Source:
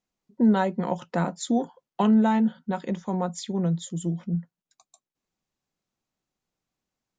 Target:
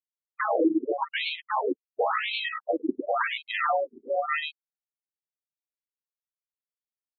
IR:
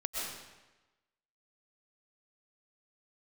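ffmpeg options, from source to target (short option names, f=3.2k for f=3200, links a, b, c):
-filter_complex "[0:a]afftfilt=real='real(if(lt(b,960),b+48*(1-2*mod(floor(b/48),2)),b),0)':imag='imag(if(lt(b,960),b+48*(1-2*mod(floor(b/48),2)),b),0)':win_size=2048:overlap=0.75,afftfilt=real='re*gte(hypot(re,im),0.224)':imag='im*gte(hypot(re,im),0.224)':win_size=1024:overlap=0.75,highpass=f=46:w=0.5412,highpass=f=46:w=1.3066,aresample=16000,acrusher=samples=25:mix=1:aa=0.000001,aresample=44100,aecho=1:1:104:0.398,acrusher=bits=8:mode=log:mix=0:aa=0.000001,acontrast=49,asplit=2[a][b];[b]highpass=f=720:p=1,volume=20dB,asoftclip=type=tanh:threshold=-6dB[c];[a][c]amix=inputs=2:normalize=0,lowpass=f=4.4k:p=1,volume=-6dB,alimiter=level_in=11.5dB:limit=-1dB:release=50:level=0:latency=1,afftfilt=real='re*between(b*sr/1024,290*pow(3100/290,0.5+0.5*sin(2*PI*0.93*pts/sr))/1.41,290*pow(3100/290,0.5+0.5*sin(2*PI*0.93*pts/sr))*1.41)':imag='im*between(b*sr/1024,290*pow(3100/290,0.5+0.5*sin(2*PI*0.93*pts/sr))/1.41,290*pow(3100/290,0.5+0.5*sin(2*PI*0.93*pts/sr))*1.41)':win_size=1024:overlap=0.75,volume=-6dB"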